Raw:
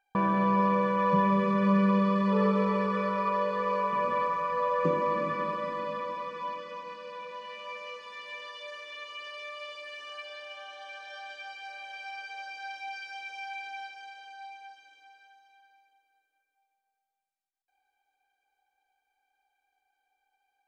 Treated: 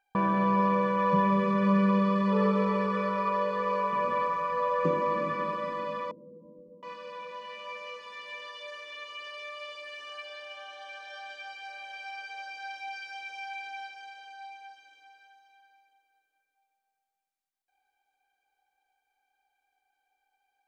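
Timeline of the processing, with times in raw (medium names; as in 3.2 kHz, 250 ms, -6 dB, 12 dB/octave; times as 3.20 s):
6.11–6.83 s: inverse Chebyshev low-pass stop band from 1.4 kHz, stop band 60 dB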